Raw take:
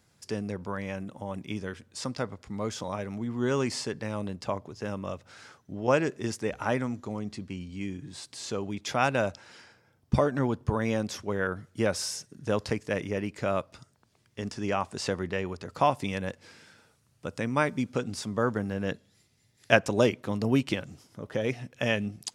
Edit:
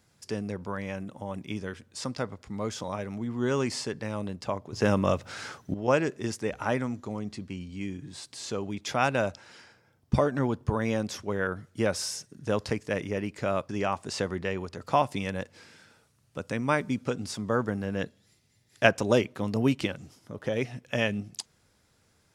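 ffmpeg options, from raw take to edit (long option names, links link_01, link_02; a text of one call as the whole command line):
ffmpeg -i in.wav -filter_complex "[0:a]asplit=4[link_01][link_02][link_03][link_04];[link_01]atrim=end=4.732[link_05];[link_02]atrim=start=4.728:end=5.742,asetpts=PTS-STARTPTS,volume=10.5dB[link_06];[link_03]atrim=start=5.738:end=13.692[link_07];[link_04]atrim=start=14.568[link_08];[link_05][link_06]acrossfade=duration=0.004:curve1=hsin:curve2=hsin[link_09];[link_09][link_07]acrossfade=duration=0.004:curve1=hsin:curve2=hsin[link_10];[link_10][link_08]acrossfade=duration=0.004:curve1=hsin:curve2=hsin" out.wav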